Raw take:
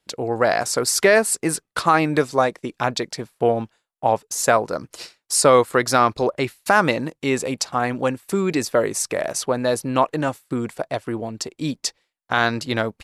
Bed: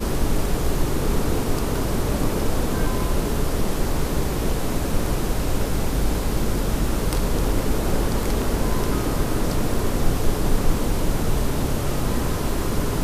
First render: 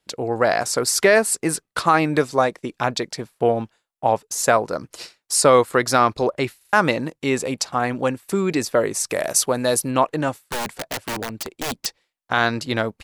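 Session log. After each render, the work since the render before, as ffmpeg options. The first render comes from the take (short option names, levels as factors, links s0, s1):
-filter_complex "[0:a]asplit=3[s0][s1][s2];[s0]afade=t=out:st=9.08:d=0.02[s3];[s1]aemphasis=mode=production:type=50kf,afade=t=in:st=9.08:d=0.02,afade=t=out:st=9.9:d=0.02[s4];[s2]afade=t=in:st=9.9:d=0.02[s5];[s3][s4][s5]amix=inputs=3:normalize=0,asettb=1/sr,asplit=3[s6][s7][s8];[s6]atrim=end=10.424[s9];[s7]atrim=start=10.42:end=11.86,asetpts=PTS-STARTPTS,afade=t=in:d=0.004:c=qsin,afade=t=out:st=1.436:d=0.004:c=qsin,aeval=exprs='(mod(11.2*val(0)+1,2)-1)/11.2':c=same[s10];[s8]atrim=start=11.856[s11];[s9][s10]acrossfade=d=0.004:c1=hsin:c2=qsin[s12];[s12][s11]acrossfade=d=0.004:c1=qsin:c2=hsin,asplit=5[s13][s14][s15][s16][s17];[s13]atrim=end=6.612[s18];[s14]atrim=start=6.568:end=6.612[s19];[s15]atrim=start=6.568:end=6.612[s20];[s16]atrim=start=6.568:end=6.612[s21];[s17]atrim=start=6.728[s22];[s18][s19]acrossfade=d=0.004:c1=hsin:c2=hsin[s23];[s23][s20]acrossfade=d=0.004:c1=hsin:c2=hsin[s24];[s24][s21]acrossfade=d=0.004:c1=hsin:c2=hsin[s25];[s25][s22]acrossfade=d=0.004:c1=hsin:c2=hsin"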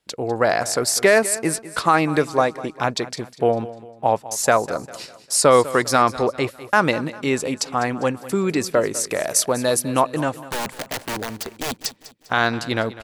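-af "aecho=1:1:200|400|600|800:0.15|0.0643|0.0277|0.0119"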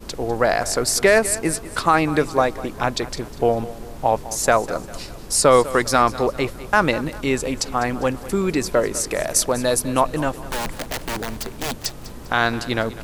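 -filter_complex "[1:a]volume=0.188[s0];[0:a][s0]amix=inputs=2:normalize=0"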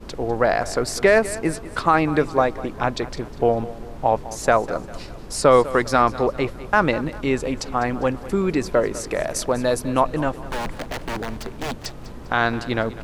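-af "lowpass=f=2600:p=1"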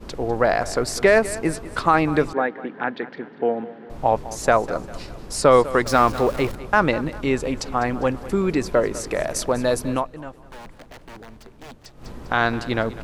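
-filter_complex "[0:a]asettb=1/sr,asplit=3[s0][s1][s2];[s0]atrim=end=2.334[s3];[s1]atrim=start=2.33:end=3.9,asetpts=PTS-STARTPTS,afade=t=in:d=0.004:c=qsin,afade=t=out:st=1.566:d=0.004:c=qsin,highpass=f=200:w=0.5412,highpass=f=200:w=1.3066,equalizer=f=350:t=q:w=4:g=-4,equalizer=f=620:t=q:w=4:g=-8,equalizer=f=1100:t=q:w=4:g=-9,equalizer=f=1700:t=q:w=4:g=6,equalizer=f=2500:t=q:w=4:g=-5,lowpass=f=2900:w=0.5412,lowpass=f=2900:w=1.3066[s4];[s2]atrim=start=3.896[s5];[s3][s4]acrossfade=d=0.004:c1=hsin:c2=qsin[s6];[s6][s5]acrossfade=d=0.004:c1=qsin:c2=hsin,asettb=1/sr,asplit=3[s7][s8][s9];[s7]atrim=end=5.864[s10];[s8]atrim=start=5.86:end=6.55,asetpts=PTS-STARTPTS,afade=t=in:d=0.004:c=qsin,afade=t=out:st=0.686:d=0.004:c=qsin,aeval=exprs='val(0)+0.5*0.0299*sgn(val(0))':c=same[s11];[s9]atrim=start=6.546[s12];[s10][s11]acrossfade=d=0.004:c1=hsin:c2=qsin[s13];[s13][s12]acrossfade=d=0.004:c1=qsin:c2=hsin,asplit=3[s14][s15][s16];[s14]atrim=end=10.1,asetpts=PTS-STARTPTS,afade=t=out:st=9.94:d=0.16:c=qua:silence=0.223872[s17];[s15]atrim=start=10.1:end=11.91,asetpts=PTS-STARTPTS,volume=0.224[s18];[s16]atrim=start=11.91,asetpts=PTS-STARTPTS,afade=t=in:d=0.16:c=qua:silence=0.223872[s19];[s17][s18][s19]concat=n=3:v=0:a=1"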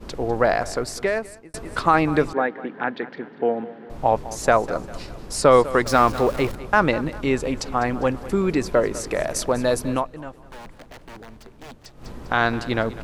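-filter_complex "[0:a]asplit=2[s0][s1];[s0]atrim=end=1.54,asetpts=PTS-STARTPTS,afade=t=out:st=0.47:d=1.07[s2];[s1]atrim=start=1.54,asetpts=PTS-STARTPTS,afade=t=in:d=0.004:c=hsin[s3];[s2][s3]concat=n=2:v=0:a=1"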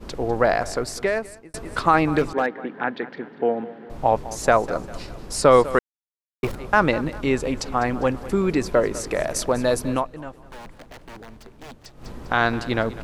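-filter_complex "[0:a]asettb=1/sr,asplit=3[s0][s1][s2];[s0]atrim=end=2.184[s3];[s1]atrim=start=2.18:end=2.66,asetpts=PTS-STARTPTS,afade=t=in:d=0.004:c=qsin,afade=t=out:st=0.476:d=0.004:c=qsin,volume=4.47,asoftclip=hard,volume=0.224[s4];[s2]atrim=start=2.656[s5];[s3][s4]acrossfade=d=0.004:c1=hsin:c2=qsin[s6];[s6][s5]acrossfade=d=0.004:c1=qsin:c2=hsin,asplit=3[s7][s8][s9];[s7]atrim=end=5.79,asetpts=PTS-STARTPTS,afade=t=out:st=5.786:d=0.004:c=hsin[s10];[s8]atrim=start=5.79:end=6.43,asetpts=PTS-STARTPTS,volume=0[s11];[s9]atrim=start=6.43,asetpts=PTS-STARTPTS,afade=t=in:d=0.004:c=hsin[s12];[s10][s11][s12]concat=n=3:v=0:a=1"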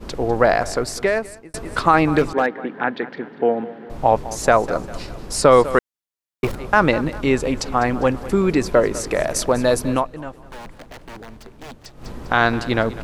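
-af "volume=1.5,alimiter=limit=0.708:level=0:latency=1"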